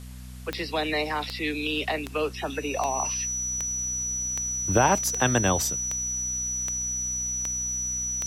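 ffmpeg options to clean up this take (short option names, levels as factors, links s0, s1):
-af "adeclick=t=4,bandreject=f=62.5:t=h:w=4,bandreject=f=125:t=h:w=4,bandreject=f=187.5:t=h:w=4,bandreject=f=250:t=h:w=4,bandreject=f=5900:w=30,afwtdn=0.0028"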